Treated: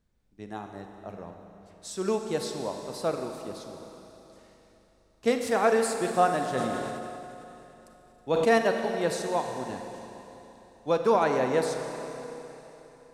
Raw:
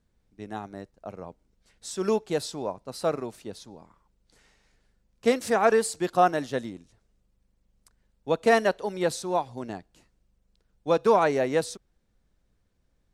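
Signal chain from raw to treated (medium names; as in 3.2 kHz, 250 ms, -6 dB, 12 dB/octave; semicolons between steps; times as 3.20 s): Schroeder reverb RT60 3.5 s, combs from 31 ms, DRR 4.5 dB; 6.48–8.58 s: decay stretcher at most 23 dB/s; trim -2.5 dB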